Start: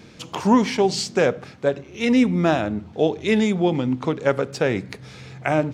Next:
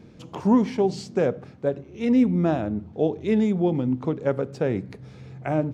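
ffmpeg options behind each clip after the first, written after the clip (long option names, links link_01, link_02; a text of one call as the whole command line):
ffmpeg -i in.wav -af "tiltshelf=frequency=970:gain=7,volume=-7.5dB" out.wav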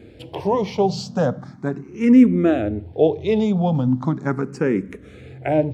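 ffmpeg -i in.wav -filter_complex "[0:a]asplit=2[link_01][link_02];[link_02]afreqshift=0.38[link_03];[link_01][link_03]amix=inputs=2:normalize=1,volume=8dB" out.wav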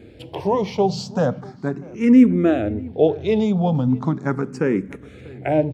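ffmpeg -i in.wav -filter_complex "[0:a]asplit=2[link_01][link_02];[link_02]adelay=641.4,volume=-22dB,highshelf=frequency=4000:gain=-14.4[link_03];[link_01][link_03]amix=inputs=2:normalize=0" out.wav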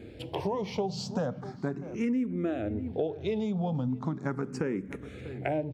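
ffmpeg -i in.wav -af "acompressor=threshold=-26dB:ratio=6,volume=-2dB" out.wav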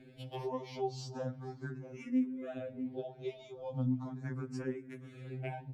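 ffmpeg -i in.wav -af "afftfilt=real='re*2.45*eq(mod(b,6),0)':imag='im*2.45*eq(mod(b,6),0)':win_size=2048:overlap=0.75,volume=-6dB" out.wav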